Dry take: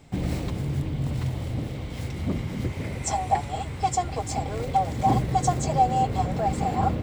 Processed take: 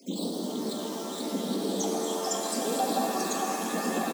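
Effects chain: random holes in the spectrogram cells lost 27%; compression 6:1, threshold -25 dBFS, peak gain reduction 10 dB; resonant high shelf 2.6 kHz +6.5 dB, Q 1.5; frequency-shifting echo 404 ms, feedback 44%, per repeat -100 Hz, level -15 dB; peak limiter -22 dBFS, peak gain reduction 11 dB; phase shifter stages 8, 0.46 Hz, lowest notch 540–2200 Hz; tempo 1.7×; steep high-pass 190 Hz 96 dB/octave; high-order bell 2 kHz -13.5 dB 1.2 oct; pitch-shifted reverb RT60 3.8 s, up +7 st, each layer -2 dB, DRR 1.5 dB; trim +5 dB

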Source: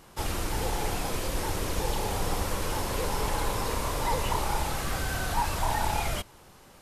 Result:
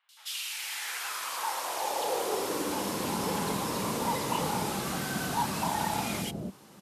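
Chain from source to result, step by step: three bands offset in time mids, highs, lows 90/280 ms, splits 540/1800 Hz; high-pass sweep 3.5 kHz -> 190 Hz, 0.21–3.08 s

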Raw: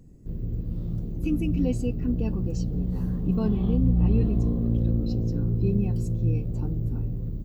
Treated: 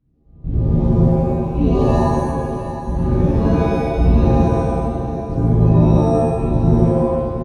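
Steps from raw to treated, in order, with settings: low-pass 3.7 kHz 24 dB/octave; peaking EQ 460 Hz -9.5 dB 0.33 oct; in parallel at -3 dB: compressor with a negative ratio -29 dBFS, ratio -0.5; on the sum: trance gate "..xxx..xx.." 68 bpm -24 dB; on a send: delay 717 ms -11.5 dB; on the sum: pitch-shifted reverb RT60 1.3 s, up +7 st, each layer -2 dB, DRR -10 dB; trim -3.5 dB

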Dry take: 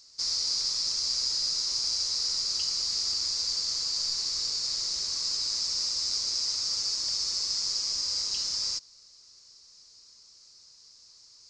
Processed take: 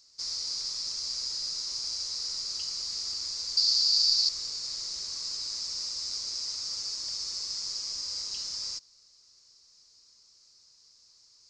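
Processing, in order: 3.57–4.29 s: peaking EQ 4.5 kHz +13 dB 0.73 oct; trim -5 dB

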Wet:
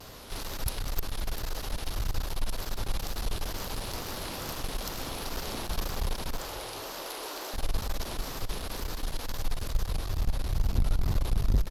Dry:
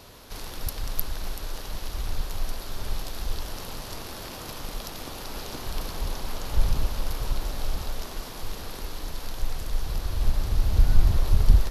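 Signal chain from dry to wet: wow and flutter 140 cents; in parallel at +1.5 dB: gain riding within 3 dB 0.5 s; 6.39–7.54 s: on the sum: steep high-pass 310 Hz 36 dB/octave; one-sided clip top -26 dBFS, bottom -8 dBFS; frequency-shifting echo 211 ms, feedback 44%, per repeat -61 Hz, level -17 dB; on a send at -19 dB: reverberation RT60 2.8 s, pre-delay 40 ms; on the sum: trim -6.5 dB

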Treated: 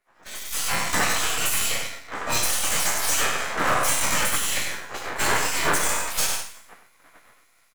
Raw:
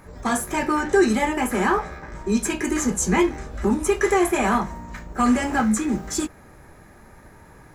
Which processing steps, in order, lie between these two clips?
spectral sustain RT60 0.72 s; bass shelf 82 Hz +8 dB; spectral gate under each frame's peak -25 dB weak; half-wave rectifier; on a send: delay 97 ms -7.5 dB; on the sum: compression 12:1, threshold -36 dBFS, peak gain reduction 10 dB; peaking EQ 1.1 kHz +3 dB 1.7 oct; in parallel at -5.5 dB: integer overflow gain 30 dB; on the sum: level rider gain up to 8.5 dB; three bands expanded up and down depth 100%; trim +7 dB

